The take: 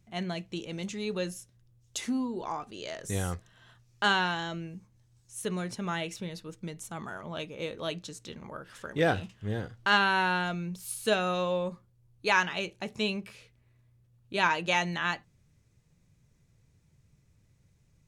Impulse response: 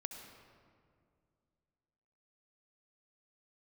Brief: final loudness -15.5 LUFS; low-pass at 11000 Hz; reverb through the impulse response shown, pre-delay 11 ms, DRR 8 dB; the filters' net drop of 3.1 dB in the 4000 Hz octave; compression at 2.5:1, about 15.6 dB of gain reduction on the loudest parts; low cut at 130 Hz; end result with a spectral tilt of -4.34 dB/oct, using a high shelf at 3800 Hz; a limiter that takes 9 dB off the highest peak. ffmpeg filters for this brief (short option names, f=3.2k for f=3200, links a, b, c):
-filter_complex "[0:a]highpass=130,lowpass=11k,highshelf=f=3.8k:g=3.5,equalizer=f=4k:t=o:g=-6.5,acompressor=threshold=-45dB:ratio=2.5,alimiter=level_in=9.5dB:limit=-24dB:level=0:latency=1,volume=-9.5dB,asplit=2[a][b];[1:a]atrim=start_sample=2205,adelay=11[c];[b][c]afir=irnorm=-1:irlink=0,volume=-6dB[d];[a][d]amix=inputs=2:normalize=0,volume=29dB"